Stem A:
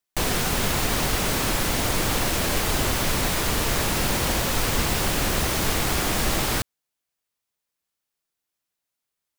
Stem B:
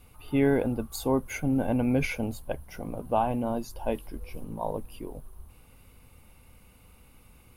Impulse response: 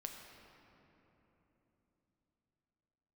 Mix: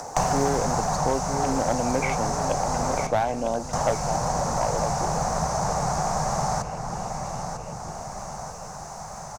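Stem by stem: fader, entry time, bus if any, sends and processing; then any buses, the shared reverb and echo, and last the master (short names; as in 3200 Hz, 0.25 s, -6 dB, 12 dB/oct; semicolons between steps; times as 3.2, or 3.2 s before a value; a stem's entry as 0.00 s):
+1.0 dB, 0.00 s, muted 3.07–3.73, send -10.5 dB, echo send -23.5 dB, EQ curve 100 Hz 0 dB, 160 Hz +9 dB, 310 Hz -13 dB, 760 Hz +14 dB, 3200 Hz -19 dB, 6200 Hz +8 dB, 14000 Hz -23 dB; upward compressor, threshold -36 dBFS; auto duck -13 dB, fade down 1.20 s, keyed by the second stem
-4.0 dB, 0.00 s, no send, echo send -10.5 dB, HPF 190 Hz; bell 640 Hz +10 dB 1.5 oct; stepped low-pass 6.2 Hz 800–6400 Hz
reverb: on, RT60 3.7 s, pre-delay 7 ms
echo: feedback echo 0.949 s, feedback 39%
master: one-sided clip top -18 dBFS; three-band squash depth 70%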